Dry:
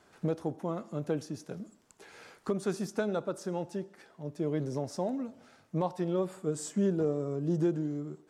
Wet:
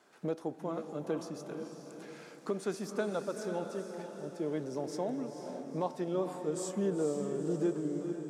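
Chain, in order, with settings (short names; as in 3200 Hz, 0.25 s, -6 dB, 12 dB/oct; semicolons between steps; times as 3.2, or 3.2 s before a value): HPF 220 Hz 12 dB/oct; on a send: diffused feedback echo 0.471 s, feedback 49%, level -6.5 dB; on the sum: gain -2 dB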